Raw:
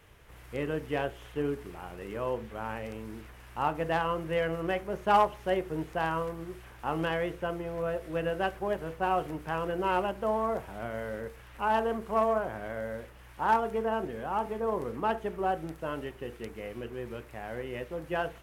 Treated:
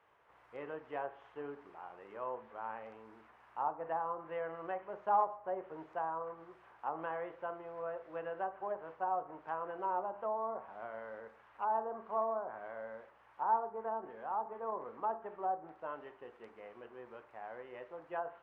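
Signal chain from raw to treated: band-pass 940 Hz, Q 1.6; Schroeder reverb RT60 0.57 s, combs from 28 ms, DRR 13 dB; treble ducked by the level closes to 1000 Hz, closed at -29.5 dBFS; gain -3 dB

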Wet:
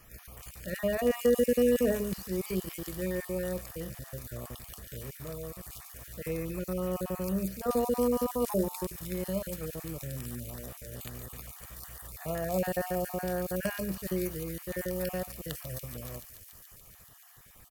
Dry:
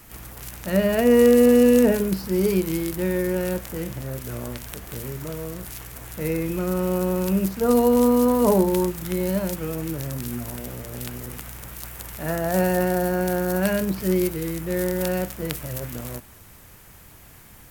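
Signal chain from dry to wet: random spectral dropouts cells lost 32%; comb 1.7 ms, depth 34%; on a send: thin delay 0.143 s, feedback 83%, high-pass 4000 Hz, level -7 dB; on the sum: gain -8.5 dB

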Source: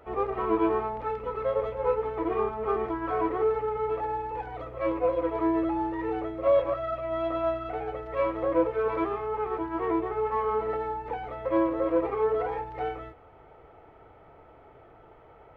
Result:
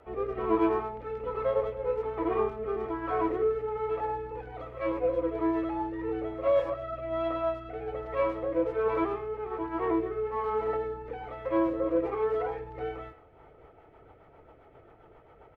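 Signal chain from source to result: speakerphone echo 0.1 s, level -13 dB; rotary speaker horn 1.2 Hz, later 7.5 Hz, at 13

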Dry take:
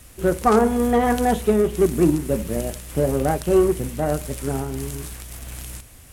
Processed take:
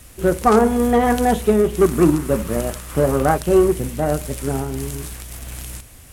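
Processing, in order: 1.81–3.38 bell 1200 Hz +10 dB 0.83 oct; gain +2.5 dB

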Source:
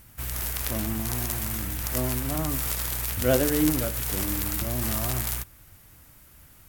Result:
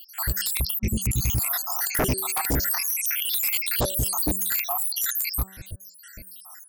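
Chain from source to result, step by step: random spectral dropouts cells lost 84%; de-hum 190.7 Hz, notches 9; 0.59–1.53 spectral repair 220–1400 Hz both; 1.6–2.07 low shelf 310 Hz +11.5 dB; in parallel at -1 dB: compressor, threshold -46 dBFS, peak gain reduction 26 dB; on the sum: sine folder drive 17 dB, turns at -9.5 dBFS; gain -8.5 dB

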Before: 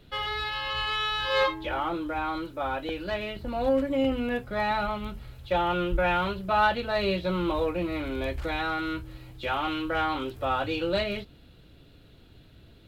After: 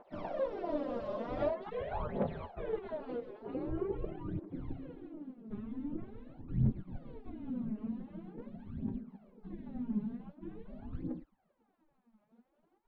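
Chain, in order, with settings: spectral gate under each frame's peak -25 dB weak; in parallel at -1.5 dB: negative-ratio compressor -51 dBFS; on the sum: phaser 0.45 Hz, delay 4.9 ms, feedback 77%; low-pass sweep 600 Hz -> 220 Hz, 2.08–5.32; gain +8 dB

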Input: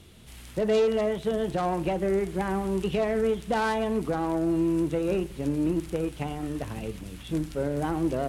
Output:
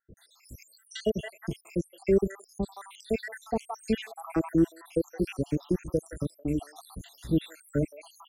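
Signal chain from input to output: random spectral dropouts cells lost 82%; dynamic EQ 850 Hz, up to -7 dB, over -53 dBFS, Q 3; bands offset in time lows, highs 0.17 s, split 840 Hz; gain +5 dB

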